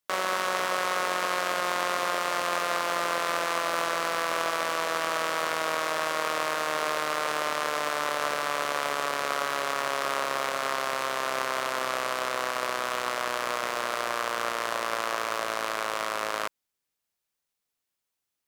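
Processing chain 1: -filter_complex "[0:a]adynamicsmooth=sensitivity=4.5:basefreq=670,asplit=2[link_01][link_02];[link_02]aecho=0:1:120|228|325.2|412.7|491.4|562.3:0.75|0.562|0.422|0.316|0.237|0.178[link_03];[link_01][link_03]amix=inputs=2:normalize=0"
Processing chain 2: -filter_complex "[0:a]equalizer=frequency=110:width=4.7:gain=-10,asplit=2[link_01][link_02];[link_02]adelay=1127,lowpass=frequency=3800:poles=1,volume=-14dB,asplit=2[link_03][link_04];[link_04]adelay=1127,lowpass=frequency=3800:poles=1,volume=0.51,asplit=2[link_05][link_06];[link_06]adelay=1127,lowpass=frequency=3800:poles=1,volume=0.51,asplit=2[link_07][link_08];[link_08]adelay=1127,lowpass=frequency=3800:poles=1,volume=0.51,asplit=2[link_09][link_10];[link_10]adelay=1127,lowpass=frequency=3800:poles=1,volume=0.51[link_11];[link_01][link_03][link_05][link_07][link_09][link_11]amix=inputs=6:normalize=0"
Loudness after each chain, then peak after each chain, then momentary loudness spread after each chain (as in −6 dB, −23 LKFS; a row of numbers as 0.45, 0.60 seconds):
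−25.0, −28.0 LKFS; −8.5, −10.5 dBFS; 2, 3 LU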